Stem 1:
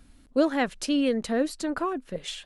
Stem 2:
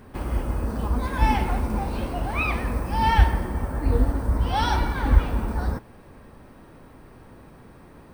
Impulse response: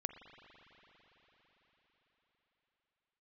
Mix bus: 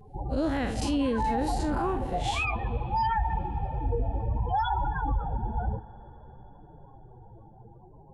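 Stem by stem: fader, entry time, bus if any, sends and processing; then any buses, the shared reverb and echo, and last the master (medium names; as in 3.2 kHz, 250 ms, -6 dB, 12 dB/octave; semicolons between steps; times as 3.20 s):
+1.5 dB, 0.00 s, send -5 dB, spectral blur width 97 ms; expander -42 dBFS
+0.5 dB, 0.00 s, send -8 dB, graphic EQ with 31 bands 250 Hz -11 dB, 800 Hz +7 dB, 5 kHz +11 dB; loudest bins only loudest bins 16; flange 0.6 Hz, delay 6.7 ms, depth 2.5 ms, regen +37%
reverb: on, RT60 5.0 s, pre-delay 41 ms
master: peak limiter -19.5 dBFS, peak gain reduction 12.5 dB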